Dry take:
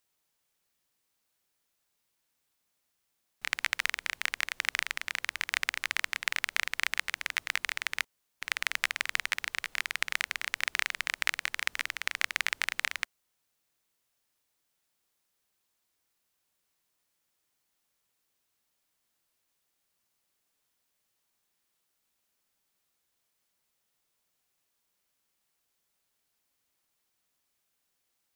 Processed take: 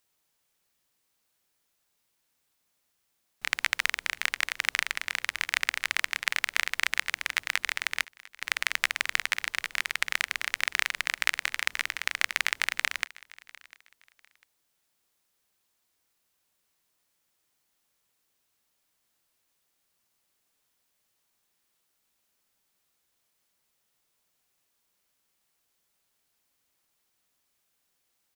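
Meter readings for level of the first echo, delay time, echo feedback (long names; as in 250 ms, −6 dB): −22.0 dB, 699 ms, 26%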